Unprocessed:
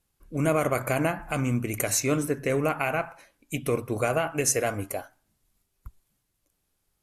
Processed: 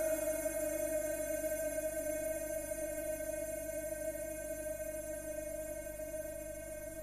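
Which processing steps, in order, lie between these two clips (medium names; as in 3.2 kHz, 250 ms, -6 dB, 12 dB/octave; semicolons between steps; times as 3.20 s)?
reverse spectral sustain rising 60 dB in 2.16 s; bass shelf 440 Hz -10.5 dB; feedback comb 310 Hz, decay 0.97 s, mix 90%; Paulstretch 48×, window 0.05 s, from 5.07 s; hum 50 Hz, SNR 15 dB; trim +17.5 dB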